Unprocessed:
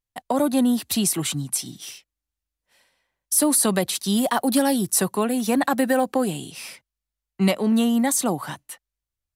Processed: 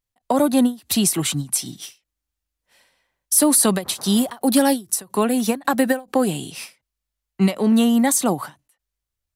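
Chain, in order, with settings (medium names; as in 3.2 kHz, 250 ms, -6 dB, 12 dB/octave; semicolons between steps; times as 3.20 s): 3.82–4.38 s: band noise 94–1200 Hz -46 dBFS; endings held to a fixed fall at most 240 dB/s; trim +3.5 dB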